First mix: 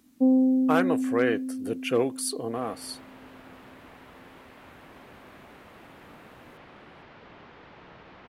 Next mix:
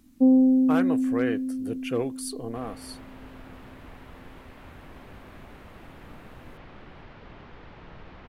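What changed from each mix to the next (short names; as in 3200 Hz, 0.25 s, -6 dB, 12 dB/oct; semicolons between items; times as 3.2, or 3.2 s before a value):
speech -5.0 dB; master: remove HPF 250 Hz 6 dB/oct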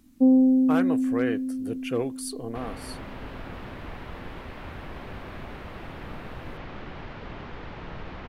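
second sound +7.5 dB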